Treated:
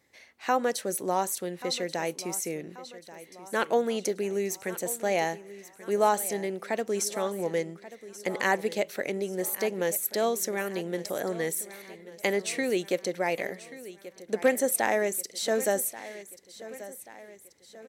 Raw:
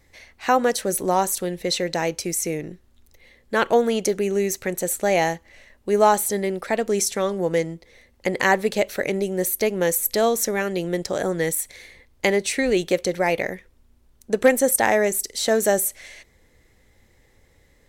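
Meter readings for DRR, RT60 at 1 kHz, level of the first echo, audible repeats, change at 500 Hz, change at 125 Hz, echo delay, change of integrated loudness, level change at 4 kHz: none, none, -16.0 dB, 4, -7.0 dB, -9.5 dB, 1.134 s, -7.0 dB, -7.0 dB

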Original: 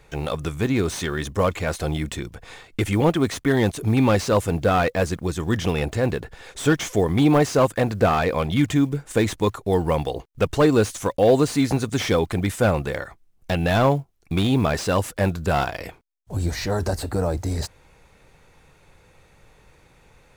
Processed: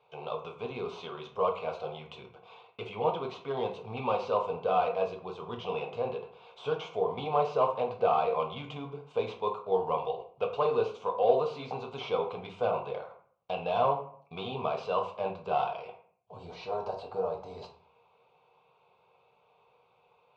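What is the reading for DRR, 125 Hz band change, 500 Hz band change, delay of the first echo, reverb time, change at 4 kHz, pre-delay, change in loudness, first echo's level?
2.0 dB, -22.0 dB, -7.5 dB, none, 0.55 s, -12.5 dB, 7 ms, -10.0 dB, none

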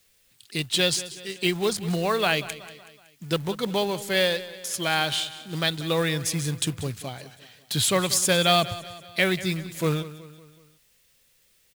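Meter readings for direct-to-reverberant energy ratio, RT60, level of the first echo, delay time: none, none, -16.0 dB, 0.187 s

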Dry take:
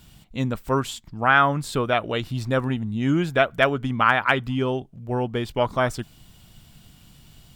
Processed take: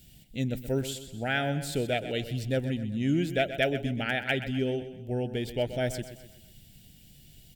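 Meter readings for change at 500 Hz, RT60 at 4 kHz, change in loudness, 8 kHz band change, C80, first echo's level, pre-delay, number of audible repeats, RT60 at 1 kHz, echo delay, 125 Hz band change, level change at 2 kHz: -5.5 dB, none, -7.5 dB, -2.5 dB, none, -12.0 dB, none, 4, none, 0.127 s, -5.0 dB, -9.5 dB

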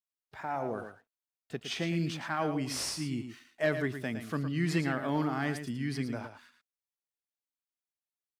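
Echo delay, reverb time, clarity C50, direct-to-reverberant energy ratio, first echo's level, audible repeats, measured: 0.112 s, none, none, none, -9.0 dB, 1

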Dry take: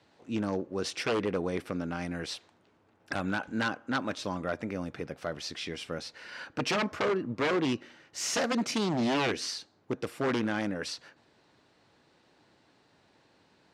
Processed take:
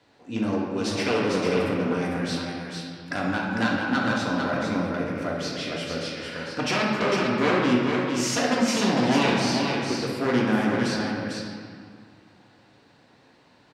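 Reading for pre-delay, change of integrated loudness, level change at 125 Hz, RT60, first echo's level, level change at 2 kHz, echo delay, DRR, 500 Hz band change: 3 ms, +7.5 dB, +8.5 dB, 2.1 s, -4.0 dB, +7.5 dB, 0.451 s, -5.0 dB, +7.0 dB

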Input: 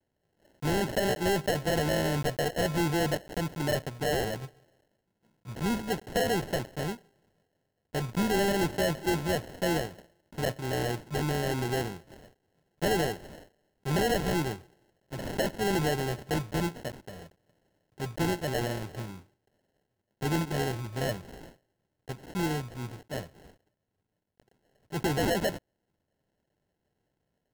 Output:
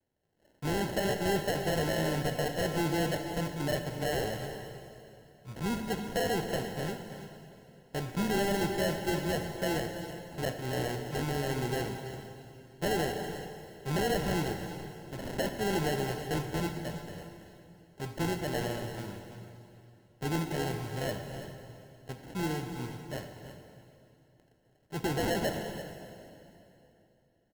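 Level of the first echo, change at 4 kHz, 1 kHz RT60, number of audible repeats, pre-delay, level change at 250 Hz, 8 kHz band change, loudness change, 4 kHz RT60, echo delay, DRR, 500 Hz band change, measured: -12.0 dB, -2.5 dB, 2.8 s, 1, 20 ms, -2.0 dB, -2.5 dB, -3.0 dB, 2.7 s, 0.33 s, 5.5 dB, -2.5 dB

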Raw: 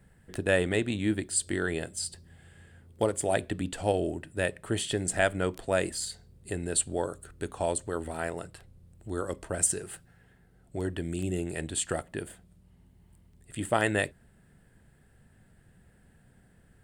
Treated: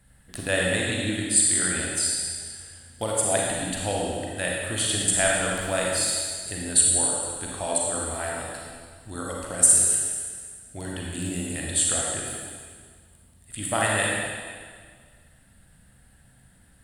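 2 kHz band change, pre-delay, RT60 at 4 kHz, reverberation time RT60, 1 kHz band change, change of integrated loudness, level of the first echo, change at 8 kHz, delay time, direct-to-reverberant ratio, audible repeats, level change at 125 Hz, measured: +5.5 dB, 34 ms, 1.8 s, 1.8 s, +4.0 dB, +7.5 dB, none, +12.5 dB, none, -3.0 dB, none, +1.5 dB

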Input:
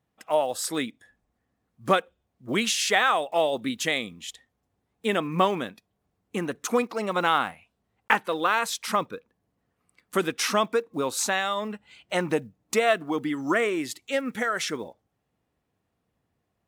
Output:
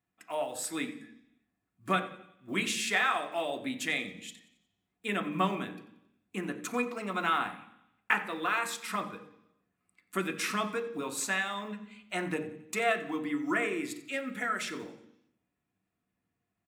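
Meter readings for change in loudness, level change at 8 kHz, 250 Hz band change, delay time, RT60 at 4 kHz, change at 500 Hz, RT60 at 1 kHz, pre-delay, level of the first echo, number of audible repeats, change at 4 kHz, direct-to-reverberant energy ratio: -6.5 dB, -7.0 dB, -5.0 dB, 90 ms, 0.90 s, -9.5 dB, 0.75 s, 3 ms, -17.0 dB, 3, -8.0 dB, 4.5 dB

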